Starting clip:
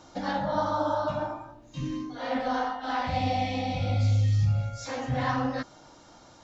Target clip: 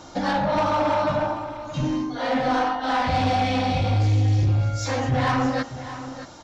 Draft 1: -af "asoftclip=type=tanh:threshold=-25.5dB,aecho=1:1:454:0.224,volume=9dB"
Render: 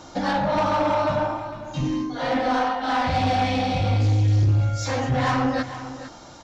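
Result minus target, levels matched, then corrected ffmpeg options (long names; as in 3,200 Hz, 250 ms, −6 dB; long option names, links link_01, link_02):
echo 171 ms early
-af "asoftclip=type=tanh:threshold=-25.5dB,aecho=1:1:625:0.224,volume=9dB"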